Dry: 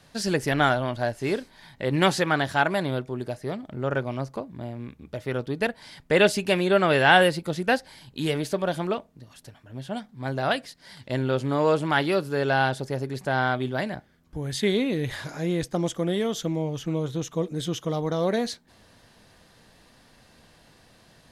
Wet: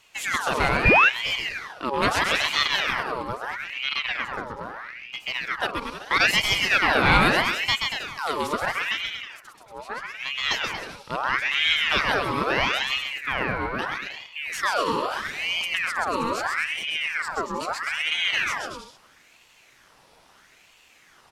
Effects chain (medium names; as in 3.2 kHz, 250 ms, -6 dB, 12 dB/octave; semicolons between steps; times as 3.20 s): 13.01–13.79 s: peaking EQ 4.5 kHz -11 dB 2.2 oct; bouncing-ball echo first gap 130 ms, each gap 0.8×, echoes 5; 0.85–1.09 s: painted sound fall 530–1300 Hz -13 dBFS; in parallel at -4 dB: one-sided clip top -10 dBFS; on the sum: ring modulator with a swept carrier 1.7 kHz, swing 60%, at 0.77 Hz; trim -3.5 dB